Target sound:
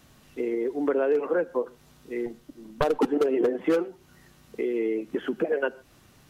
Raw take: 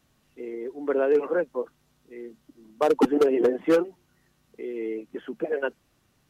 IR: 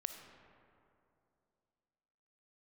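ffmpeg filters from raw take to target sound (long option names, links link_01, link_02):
-filter_complex "[0:a]asettb=1/sr,asplit=3[link_01][link_02][link_03];[link_01]atrim=end=2.264[link_04];[link_02]atrim=start=2.26:end=2.84,asetpts=PTS-STARTPTS,afade=type=in:duration=0.004:curve=qsin,afade=type=out:start_time=0.576:duration=0.004:curve=qsin,aeval=exprs='0.299*(cos(1*acos(clip(val(0)/0.299,-1,1)))-cos(1*PI/2))+0.0668*(cos(6*acos(clip(val(0)/0.299,-1,1)))-cos(6*PI/2))+0.015*(cos(7*acos(clip(val(0)/0.299,-1,1)))-cos(7*PI/2))':channel_layout=same[link_05];[link_03]atrim=start=2.836[link_06];[link_04][link_05]acrossfade=duration=0.004:curve1=hsin:curve2=qsin[link_07];[link_07][link_06]acrossfade=duration=0.004:curve1=qsin:curve2=hsin,acompressor=threshold=-36dB:ratio=3,asplit=2[link_08][link_09];[1:a]atrim=start_sample=2205,afade=type=out:start_time=0.23:duration=0.01,atrim=end_sample=10584,asetrate=52920,aresample=44100[link_10];[link_09][link_10]afir=irnorm=-1:irlink=0,volume=-6.5dB[link_11];[link_08][link_11]amix=inputs=2:normalize=0,volume=8.5dB"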